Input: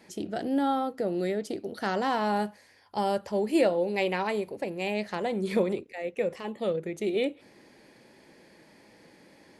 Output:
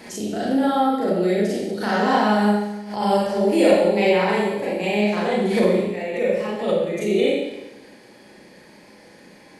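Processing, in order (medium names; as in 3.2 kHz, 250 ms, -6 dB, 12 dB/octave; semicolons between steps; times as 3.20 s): Schroeder reverb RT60 0.98 s, combs from 30 ms, DRR -8 dB; swell ahead of each attack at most 83 dB/s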